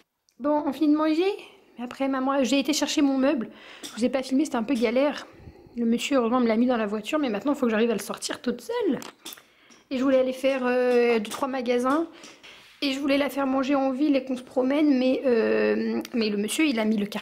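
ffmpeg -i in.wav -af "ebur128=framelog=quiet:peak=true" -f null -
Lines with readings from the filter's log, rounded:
Integrated loudness:
  I:         -24.5 LUFS
  Threshold: -35.1 LUFS
Loudness range:
  LRA:         2.8 LU
  Threshold: -45.2 LUFS
  LRA low:   -26.7 LUFS
  LRA high:  -23.9 LUFS
True peak:
  Peak:      -10.6 dBFS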